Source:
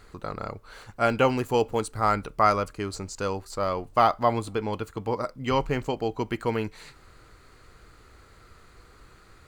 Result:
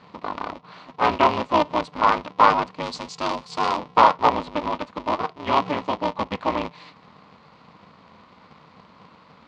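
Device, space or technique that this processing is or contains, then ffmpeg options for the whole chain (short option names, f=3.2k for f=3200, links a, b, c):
ring modulator pedal into a guitar cabinet: -filter_complex "[0:a]aeval=exprs='val(0)*sgn(sin(2*PI*150*n/s))':c=same,highpass=110,equalizer=f=120:t=q:w=4:g=-10,equalizer=f=380:t=q:w=4:g=-5,equalizer=f=1k:t=q:w=4:g=10,equalizer=f=1.6k:t=q:w=4:g=-8,lowpass=f=4.5k:w=0.5412,lowpass=f=4.5k:w=1.3066,asettb=1/sr,asplit=3[a][b][c];[a]atrim=end=2.834[d];[b]atrim=start=2.83:end=3.79,asetpts=PTS-STARTPTS,afade=t=in:d=0.004:c=qsin,afade=t=out:st=0.956:d=0.004:c=qsin,aemphasis=mode=production:type=75fm[e];[c]atrim=start=3.786[f];[d][e]acrossfade=d=0.004:c1=hsin:c2=qsin[g];[g][f]acrossfade=d=0.004:c1=qsin:c2=hsin,volume=2.5dB"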